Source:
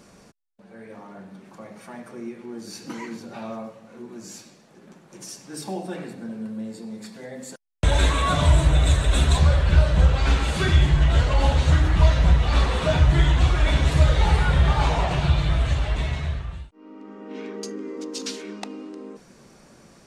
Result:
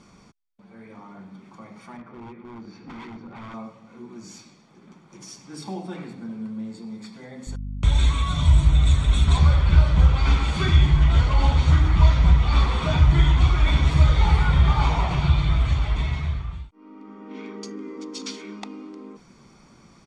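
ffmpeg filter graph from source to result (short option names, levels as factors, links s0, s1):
-filter_complex "[0:a]asettb=1/sr,asplit=3[s0][s1][s2];[s0]atrim=end=1.974[s3];[s1]atrim=start=1.97:end=3.54,asetpts=PTS-STARTPTS,afade=t=in:d=0.004:c=qsin,afade=t=out:st=1.566:d=0.004:c=qsin,lowpass=2100,aeval=exprs='0.0224*(abs(mod(val(0)/0.0224+3,4)-2)-1)':c=same[s4];[s2]atrim=start=3.536[s5];[s3][s4]acrossfade=d=0.004:c1=hsin:c2=qsin[s6];[s6][s5]acrossfade=d=0.004:c1=qsin:c2=hsin,asettb=1/sr,asplit=3[s7][s8][s9];[s7]atrim=end=7.474[s10];[s8]atrim=start=7.47:end=9.28,asetpts=PTS-STARTPTS,afade=t=in:d=0.004:c=qsin,afade=t=out:st=1.806:d=0.004:c=qsin,bandreject=f=4800:w=13,acrossover=split=160|3000[s11][s12][s13];[s12]acompressor=threshold=0.0282:ratio=5:attack=3.2:release=140:knee=2.83:detection=peak[s14];[s11][s14][s13]amix=inputs=3:normalize=0,aeval=exprs='val(0)+0.0282*(sin(2*PI*50*n/s)+sin(2*PI*2*50*n/s)/2+sin(2*PI*3*50*n/s)/3+sin(2*PI*4*50*n/s)/4+sin(2*PI*5*50*n/s)/5)':c=same[s15];[s9]atrim=start=9.276[s16];[s10][s15]acrossfade=d=0.004:c1=hsin:c2=qsin[s17];[s17][s16]acrossfade=d=0.004:c1=qsin:c2=hsin,lowpass=6200,aecho=1:1:0.9:0.48,volume=0.794"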